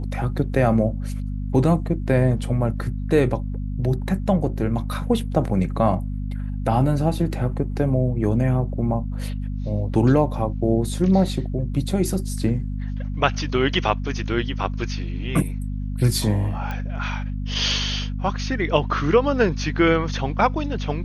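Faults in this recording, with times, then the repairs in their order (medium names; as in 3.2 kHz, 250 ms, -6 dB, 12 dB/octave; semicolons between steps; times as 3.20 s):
hum 50 Hz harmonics 5 -27 dBFS
16.71 s: pop -17 dBFS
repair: de-click; de-hum 50 Hz, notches 5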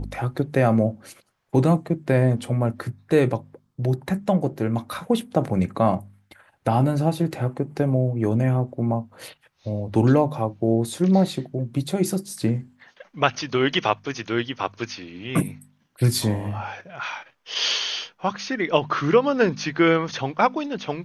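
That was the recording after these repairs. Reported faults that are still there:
nothing left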